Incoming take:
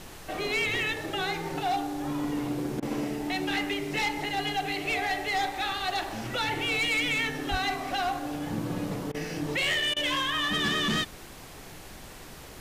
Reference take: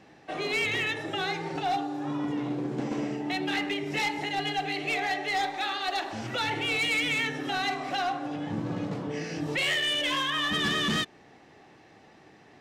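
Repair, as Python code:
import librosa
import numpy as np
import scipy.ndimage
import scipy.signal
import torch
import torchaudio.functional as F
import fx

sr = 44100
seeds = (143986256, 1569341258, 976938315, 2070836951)

y = fx.highpass(x, sr, hz=140.0, slope=24, at=(7.5, 7.62), fade=0.02)
y = fx.fix_interpolate(y, sr, at_s=(2.8, 9.12, 9.94), length_ms=23.0)
y = fx.noise_reduce(y, sr, print_start_s=11.16, print_end_s=11.66, reduce_db=10.0)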